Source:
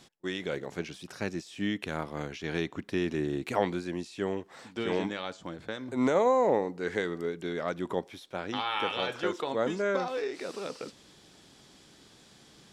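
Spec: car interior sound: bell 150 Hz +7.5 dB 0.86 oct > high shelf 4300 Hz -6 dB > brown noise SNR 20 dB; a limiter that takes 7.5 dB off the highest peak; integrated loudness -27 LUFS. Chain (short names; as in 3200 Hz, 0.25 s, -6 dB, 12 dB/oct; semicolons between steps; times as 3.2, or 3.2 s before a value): limiter -21 dBFS; bell 150 Hz +7.5 dB 0.86 oct; high shelf 4300 Hz -6 dB; brown noise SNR 20 dB; gain +6 dB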